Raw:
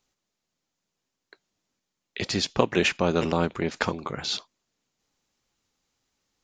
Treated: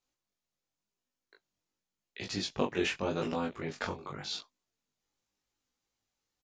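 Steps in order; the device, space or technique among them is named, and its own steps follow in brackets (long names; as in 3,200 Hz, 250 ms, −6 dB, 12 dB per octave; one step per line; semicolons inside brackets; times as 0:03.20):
double-tracked vocal (double-tracking delay 20 ms −2.5 dB; chorus effect 0.88 Hz, delay 16 ms, depth 6.4 ms)
level −8 dB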